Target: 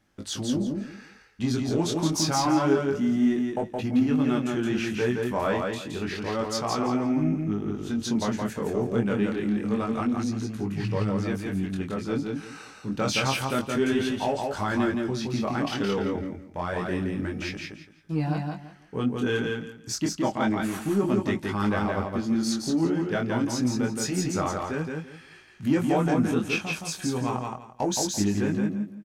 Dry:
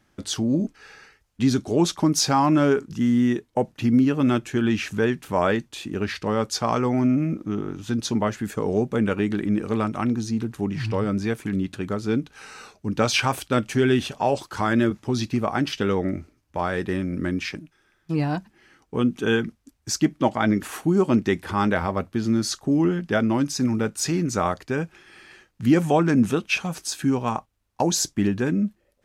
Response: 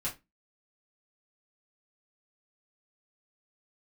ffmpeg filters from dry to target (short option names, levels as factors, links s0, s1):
-filter_complex "[0:a]asplit=2[s0][s1];[s1]asoftclip=type=tanh:threshold=0.0708,volume=0.447[s2];[s0][s2]amix=inputs=2:normalize=0,flanger=delay=19:depth=6:speed=0.28,aecho=1:1:169|338|507:0.668|0.154|0.0354,volume=0.631"